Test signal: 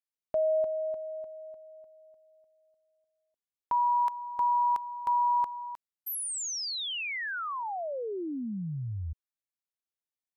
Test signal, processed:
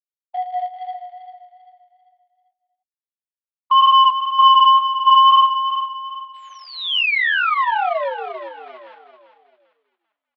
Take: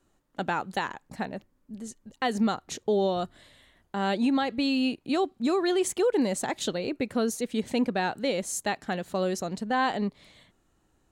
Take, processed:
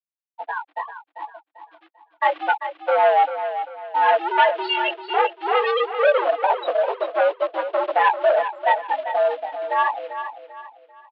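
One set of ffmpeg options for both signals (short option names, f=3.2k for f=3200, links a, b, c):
-filter_complex "[0:a]afftfilt=real='re*gte(hypot(re,im),0.158)':imag='im*gte(hypot(re,im),0.158)':win_size=1024:overlap=0.75,flanger=delay=16.5:depth=3.5:speed=2,acrossover=split=2000[a][b];[b]alimiter=level_in=17dB:limit=-24dB:level=0:latency=1:release=27,volume=-17dB[c];[a][c]amix=inputs=2:normalize=0,dynaudnorm=f=150:g=31:m=15dB,asplit=2[d][e];[e]acrusher=bits=2:mode=log:mix=0:aa=0.000001,volume=-5.5dB[f];[d][f]amix=inputs=2:normalize=0,asoftclip=type=tanh:threshold=-12dB,adynamicequalizer=threshold=0.01:dfrequency=2800:dqfactor=3.4:tfrequency=2800:tqfactor=3.4:attack=5:release=100:ratio=0.438:range=2.5:mode=boostabove:tftype=bell,aecho=1:1:393|786|1179|1572:0.316|0.111|0.0387|0.0136,highpass=f=490:t=q:w=0.5412,highpass=f=490:t=q:w=1.307,lowpass=f=3.5k:t=q:w=0.5176,lowpass=f=3.5k:t=q:w=0.7071,lowpass=f=3.5k:t=q:w=1.932,afreqshift=100,volume=3dB"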